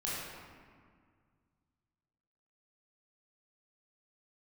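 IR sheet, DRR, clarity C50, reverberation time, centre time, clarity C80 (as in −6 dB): −8.0 dB, −2.5 dB, 1.9 s, 122 ms, −0.5 dB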